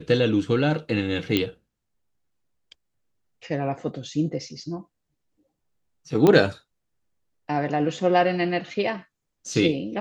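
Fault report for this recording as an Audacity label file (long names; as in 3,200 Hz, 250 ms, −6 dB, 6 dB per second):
1.370000	1.370000	click −9 dBFS
6.270000	6.270000	click −7 dBFS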